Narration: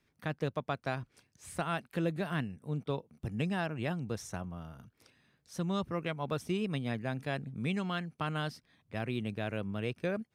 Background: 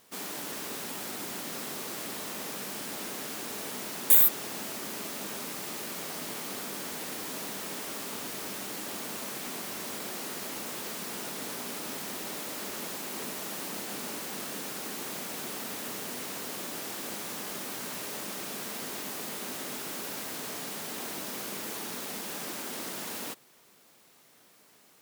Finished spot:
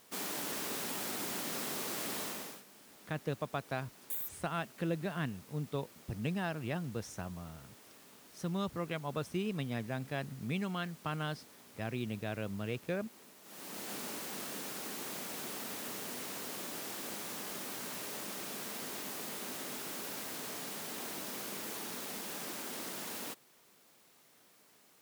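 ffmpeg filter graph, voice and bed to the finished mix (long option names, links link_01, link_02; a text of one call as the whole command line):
ffmpeg -i stem1.wav -i stem2.wav -filter_complex "[0:a]adelay=2850,volume=-2.5dB[link_01];[1:a]volume=15dB,afade=type=out:start_time=2.21:duration=0.42:silence=0.105925,afade=type=in:start_time=13.43:duration=0.47:silence=0.158489[link_02];[link_01][link_02]amix=inputs=2:normalize=0" out.wav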